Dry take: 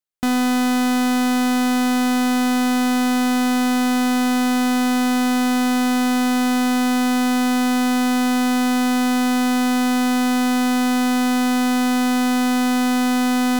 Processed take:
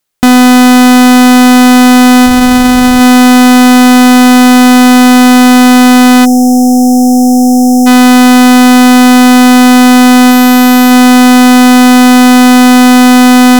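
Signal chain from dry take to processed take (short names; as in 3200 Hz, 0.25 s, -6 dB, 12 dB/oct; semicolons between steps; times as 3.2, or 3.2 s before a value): 2.25–2.99 added noise brown -30 dBFS; 6.25–7.87 spectral delete 760–5200 Hz; 10.3–10.9 whine 12000 Hz -34 dBFS; maximiser +22 dB; gain -1 dB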